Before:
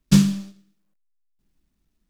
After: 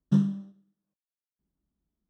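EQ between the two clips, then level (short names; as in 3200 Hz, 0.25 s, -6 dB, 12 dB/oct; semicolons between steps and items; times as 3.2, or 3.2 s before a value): running mean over 19 samples; HPF 47 Hz; -7.5 dB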